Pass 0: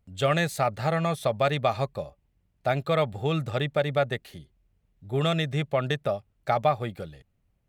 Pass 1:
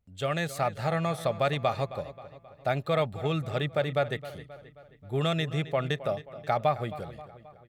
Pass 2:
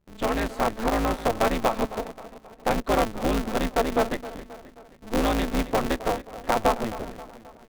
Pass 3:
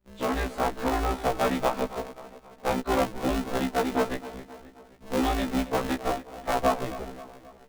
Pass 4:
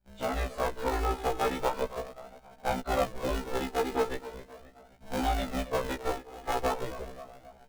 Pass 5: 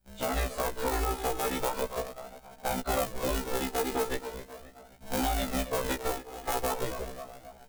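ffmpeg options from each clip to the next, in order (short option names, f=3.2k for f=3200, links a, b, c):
-filter_complex "[0:a]dynaudnorm=f=330:g=3:m=4dB,asplit=2[a][b];[b]adelay=266,lowpass=f=4.9k:p=1,volume=-15dB,asplit=2[c][d];[d]adelay=266,lowpass=f=4.9k:p=1,volume=0.54,asplit=2[e][f];[f]adelay=266,lowpass=f=4.9k:p=1,volume=0.54,asplit=2[g][h];[h]adelay=266,lowpass=f=4.9k:p=1,volume=0.54,asplit=2[i][j];[j]adelay=266,lowpass=f=4.9k:p=1,volume=0.54[k];[a][c][e][g][i][k]amix=inputs=6:normalize=0,volume=-6.5dB"
-af "lowpass=f=1.3k:p=1,aeval=exprs='val(0)*sgn(sin(2*PI*110*n/s))':c=same,volume=5dB"
-af "afftfilt=real='re*1.73*eq(mod(b,3),0)':imag='im*1.73*eq(mod(b,3),0)':win_size=2048:overlap=0.75"
-af "flanger=delay=1.3:depth=1.1:regen=21:speed=0.39:shape=sinusoidal"
-filter_complex "[0:a]highshelf=f=5.9k:g=10,acrossover=split=7200[a][b];[a]alimiter=limit=-22.5dB:level=0:latency=1:release=115[c];[c][b]amix=inputs=2:normalize=0,volume=2.5dB"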